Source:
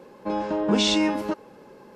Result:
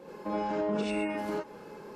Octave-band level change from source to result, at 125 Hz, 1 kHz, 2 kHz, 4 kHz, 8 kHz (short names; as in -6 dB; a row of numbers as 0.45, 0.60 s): -7.5, -4.5, -7.0, -20.5, -19.0 dB